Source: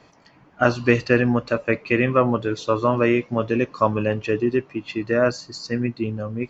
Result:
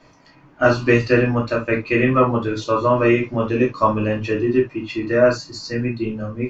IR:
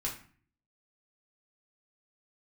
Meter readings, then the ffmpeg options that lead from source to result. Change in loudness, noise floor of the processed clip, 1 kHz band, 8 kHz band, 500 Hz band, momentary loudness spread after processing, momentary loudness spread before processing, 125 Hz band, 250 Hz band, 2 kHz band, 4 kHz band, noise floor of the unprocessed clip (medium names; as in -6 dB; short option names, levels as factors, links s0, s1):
+2.5 dB, -51 dBFS, +3.0 dB, no reading, +3.0 dB, 9 LU, 8 LU, +3.0 dB, +2.5 dB, +2.0 dB, +2.0 dB, -54 dBFS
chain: -filter_complex "[1:a]atrim=start_sample=2205,atrim=end_sample=3528[s0];[0:a][s0]afir=irnorm=-1:irlink=0"